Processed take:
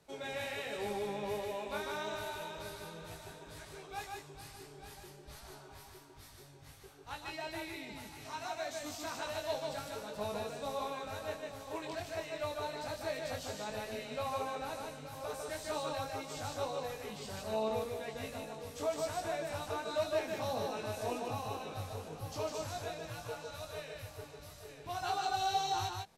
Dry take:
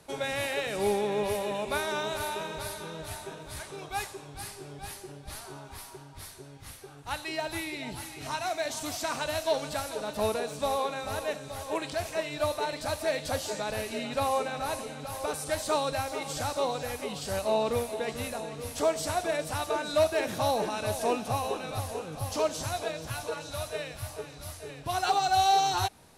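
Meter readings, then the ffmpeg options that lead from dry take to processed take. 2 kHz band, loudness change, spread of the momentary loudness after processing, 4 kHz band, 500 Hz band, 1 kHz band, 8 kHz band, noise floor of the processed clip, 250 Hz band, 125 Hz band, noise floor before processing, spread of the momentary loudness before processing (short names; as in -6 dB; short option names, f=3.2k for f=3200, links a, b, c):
-8.0 dB, -8.5 dB, 15 LU, -8.0 dB, -8.0 dB, -8.5 dB, -10.0 dB, -54 dBFS, -8.0 dB, -7.5 dB, -48 dBFS, 13 LU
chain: -filter_complex "[0:a]flanger=delay=18:depth=2:speed=1.3,equalizer=f=10k:w=5.5:g=-12,asplit=2[a][b];[b]aecho=0:1:151:0.708[c];[a][c]amix=inputs=2:normalize=0,volume=-7dB"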